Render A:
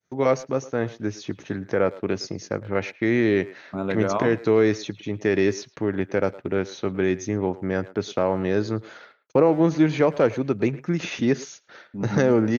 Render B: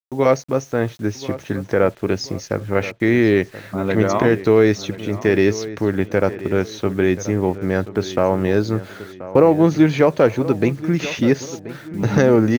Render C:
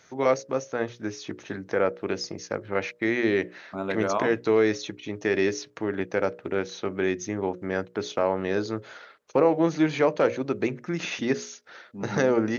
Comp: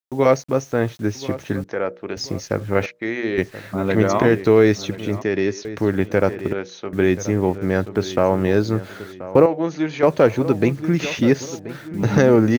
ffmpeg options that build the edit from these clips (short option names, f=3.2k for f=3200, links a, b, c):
-filter_complex "[2:a]asplit=4[a][b][c][d];[1:a]asplit=6[e][f][g][h][i][j];[e]atrim=end=1.642[k];[a]atrim=start=1.638:end=2.172[l];[f]atrim=start=2.168:end=2.862[m];[b]atrim=start=2.858:end=3.382[n];[g]atrim=start=3.378:end=5.222[o];[0:a]atrim=start=5.218:end=5.652[p];[h]atrim=start=5.648:end=6.532[q];[c]atrim=start=6.528:end=6.932[r];[i]atrim=start=6.928:end=9.462[s];[d]atrim=start=9.458:end=10.032[t];[j]atrim=start=10.028[u];[k][l]acrossfade=d=0.004:c1=hsin:c2=hsin[v];[v][m]acrossfade=d=0.004:c1=hsin:c2=hsin[w];[w][n]acrossfade=d=0.004:c1=hsin:c2=hsin[x];[x][o]acrossfade=d=0.004:c1=hsin:c2=hsin[y];[y][p]acrossfade=d=0.004:c1=hsin:c2=hsin[z];[z][q]acrossfade=d=0.004:c1=hsin:c2=hsin[aa];[aa][r]acrossfade=d=0.004:c1=hsin:c2=hsin[ab];[ab][s]acrossfade=d=0.004:c1=hsin:c2=hsin[ac];[ac][t]acrossfade=d=0.004:c1=hsin:c2=hsin[ad];[ad][u]acrossfade=d=0.004:c1=hsin:c2=hsin"